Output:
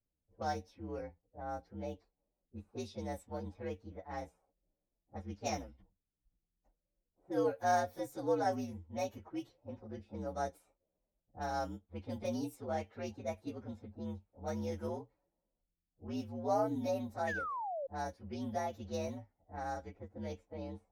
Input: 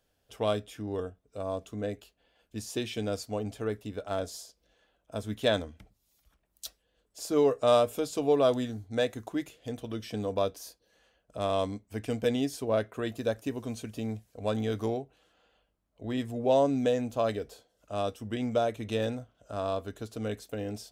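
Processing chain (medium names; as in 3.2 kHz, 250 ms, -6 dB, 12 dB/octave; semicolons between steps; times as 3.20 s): frequency axis rescaled in octaves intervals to 119%; level-controlled noise filter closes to 320 Hz, open at -29.5 dBFS; painted sound fall, 17.27–17.87 s, 520–1900 Hz -32 dBFS; trim -7 dB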